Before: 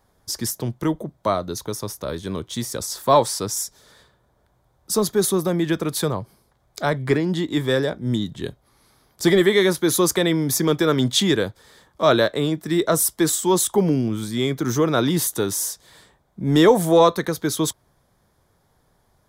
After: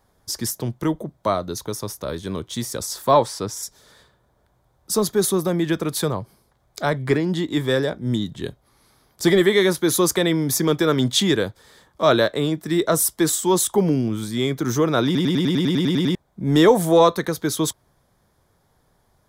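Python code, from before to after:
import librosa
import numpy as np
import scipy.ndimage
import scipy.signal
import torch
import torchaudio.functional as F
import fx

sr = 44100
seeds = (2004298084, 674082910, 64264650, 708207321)

y = fx.high_shelf(x, sr, hz=5600.0, db=-10.5, at=(3.11, 3.63))
y = fx.edit(y, sr, fx.stutter_over(start_s=15.05, slice_s=0.1, count=11), tone=tone)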